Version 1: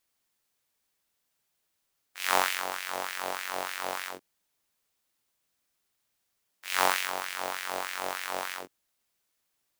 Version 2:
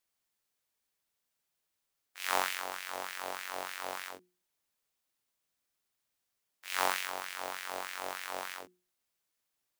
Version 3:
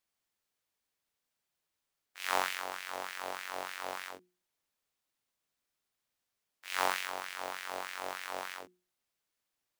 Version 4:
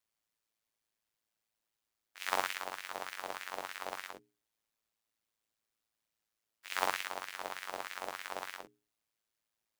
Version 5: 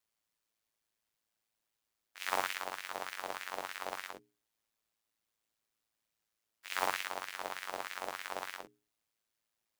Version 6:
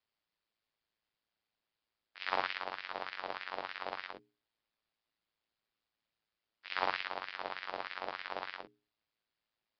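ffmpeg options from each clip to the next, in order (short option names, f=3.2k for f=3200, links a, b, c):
-af "bandreject=f=60:t=h:w=6,bandreject=f=120:t=h:w=6,bandreject=f=180:t=h:w=6,bandreject=f=240:t=h:w=6,bandreject=f=300:t=h:w=6,bandreject=f=360:t=h:w=6,volume=-5.5dB"
-af "highshelf=f=6.7k:g=-5"
-af "aeval=exprs='val(0)*sin(2*PI*55*n/s)':c=same,volume=1dB"
-af "asoftclip=type=tanh:threshold=-16dB,volume=1dB"
-af "aresample=11025,aresample=44100"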